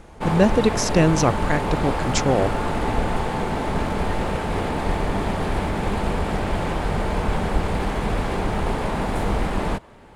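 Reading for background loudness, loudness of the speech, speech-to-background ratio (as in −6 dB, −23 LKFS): −25.0 LKFS, −21.5 LKFS, 3.5 dB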